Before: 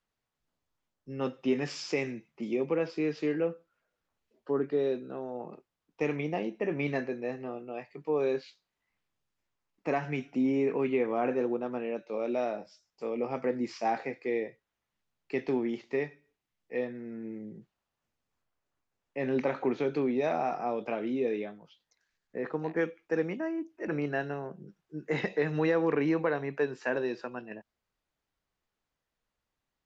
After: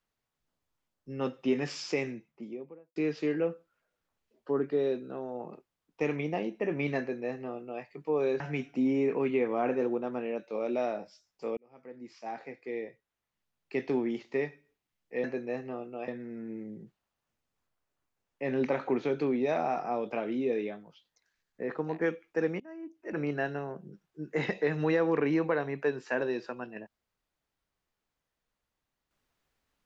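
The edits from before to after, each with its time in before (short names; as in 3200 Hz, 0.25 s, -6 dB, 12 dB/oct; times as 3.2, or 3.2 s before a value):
1.89–2.96 studio fade out
6.99–7.83 copy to 16.83
8.4–9.99 cut
13.16–15.4 fade in
23.35–24.02 fade in linear, from -21.5 dB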